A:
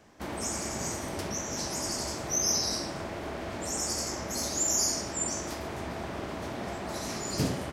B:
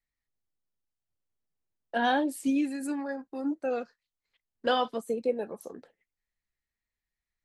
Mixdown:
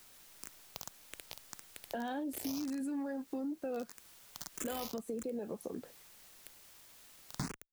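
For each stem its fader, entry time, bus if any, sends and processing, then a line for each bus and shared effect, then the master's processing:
-0.5 dB, 0.00 s, no send, tone controls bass +4 dB, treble -3 dB; bit-crush 4-bit; endless phaser +1.7 Hz
+1.5 dB, 0.00 s, no send, low shelf 410 Hz +11.5 dB; limiter -23.5 dBFS, peak gain reduction 11.5 dB; requantised 10-bit, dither triangular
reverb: off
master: compressor 4:1, threshold -38 dBFS, peak gain reduction 14 dB

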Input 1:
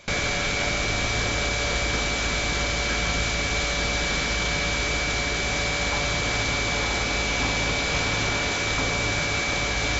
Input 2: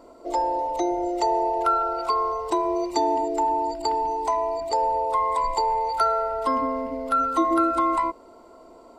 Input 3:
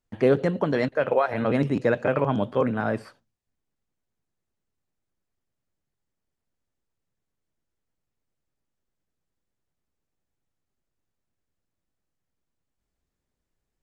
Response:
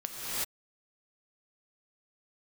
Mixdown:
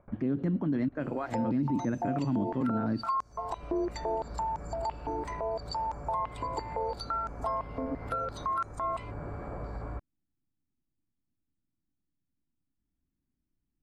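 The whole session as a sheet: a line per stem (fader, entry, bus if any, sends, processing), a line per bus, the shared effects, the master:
-8.0 dB, 0.00 s, bus A, no send, LPF 1300 Hz 24 dB/oct; limiter -22.5 dBFS, peak gain reduction 8 dB; auto duck -22 dB, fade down 0.20 s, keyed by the third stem
-3.5 dB, 1.00 s, bus A, no send, high shelf 3000 Hz +6 dB; stepped high-pass 5.9 Hz 310–6600 Hz
-9.0 dB, 0.00 s, no bus, no send, resonant low shelf 370 Hz +8 dB, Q 3
bus A: 0.0 dB, low shelf 140 Hz +6 dB; compressor 2:1, threshold -35 dBFS, peak gain reduction 12 dB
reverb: off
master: high shelf 2600 Hz -10.5 dB; limiter -22 dBFS, peak gain reduction 11.5 dB

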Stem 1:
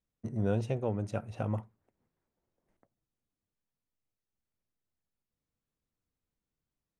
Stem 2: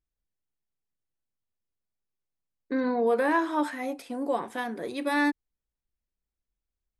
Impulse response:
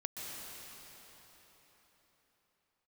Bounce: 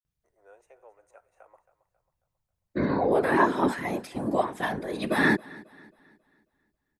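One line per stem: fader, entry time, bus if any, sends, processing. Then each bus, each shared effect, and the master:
-15.5 dB, 0.00 s, no send, echo send -15 dB, Bessel high-pass 760 Hz, order 8; band shelf 3900 Hz -14 dB 1.2 oct; AGC gain up to 3.5 dB
+2.0 dB, 0.05 s, no send, echo send -22.5 dB, comb 2.9 ms, depth 31%; whisperiser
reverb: off
echo: feedback echo 0.271 s, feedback 42%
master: dry

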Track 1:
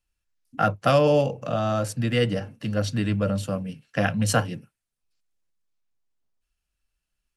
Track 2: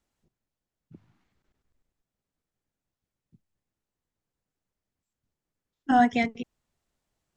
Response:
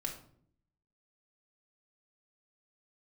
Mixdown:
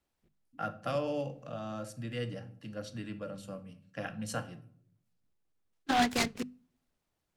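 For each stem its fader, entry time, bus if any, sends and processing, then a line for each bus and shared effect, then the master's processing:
-18.5 dB, 0.00 s, send -3.5 dB, dry
+1.0 dB, 0.00 s, send -23.5 dB, harmonic-percussive split harmonic -9 dB; noise-modulated delay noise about 2000 Hz, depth 0.08 ms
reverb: on, RT60 0.60 s, pre-delay 4 ms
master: notches 50/100/150/200/250 Hz

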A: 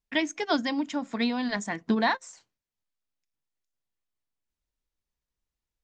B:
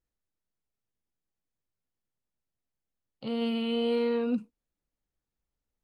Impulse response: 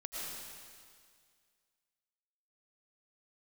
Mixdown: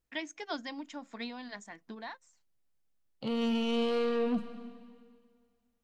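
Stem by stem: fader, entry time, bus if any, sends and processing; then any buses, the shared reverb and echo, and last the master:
-10.0 dB, 0.00 s, no send, low shelf 250 Hz -8.5 dB; auto duck -18 dB, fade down 2.00 s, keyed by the second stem
+1.0 dB, 0.00 s, send -10 dB, soft clip -29 dBFS, distortion -13 dB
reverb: on, RT60 2.0 s, pre-delay 70 ms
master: dry

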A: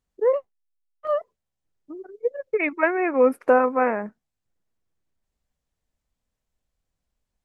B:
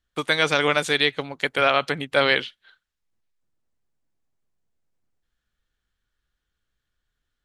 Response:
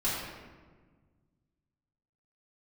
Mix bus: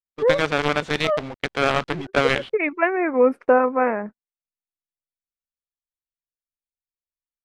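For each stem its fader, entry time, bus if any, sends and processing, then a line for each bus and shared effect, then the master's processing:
+2.0 dB, 0.00 s, no send, high shelf 2600 Hz +11 dB
-3.0 dB, 0.00 s, no send, companded quantiser 2-bit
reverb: off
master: gate -32 dBFS, range -30 dB; tape spacing loss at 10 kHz 27 dB; record warp 33 1/3 rpm, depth 100 cents

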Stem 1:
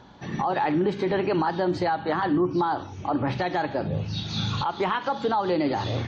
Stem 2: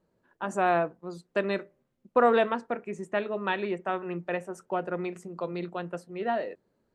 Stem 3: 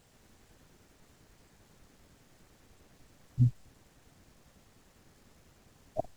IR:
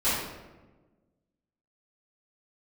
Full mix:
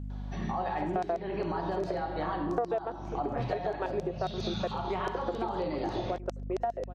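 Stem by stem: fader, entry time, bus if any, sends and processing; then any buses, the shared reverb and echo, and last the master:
-7.0 dB, 0.10 s, send -14 dB, no echo send, comb 5.4 ms, depth 33%
+2.5 dB, 0.35 s, no send, echo send -19.5 dB, Wiener smoothing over 9 samples; high shelf 2200 Hz -11 dB; LFO high-pass square 7.4 Hz 410–5800 Hz
-6.5 dB, 0.00 s, no send, no echo send, high shelf 2600 Hz -11 dB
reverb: on, RT60 1.2 s, pre-delay 3 ms
echo: echo 0.778 s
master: bell 680 Hz +7.5 dB 0.26 oct; hum 50 Hz, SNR 14 dB; compressor 6:1, threshold -29 dBFS, peak gain reduction 19 dB

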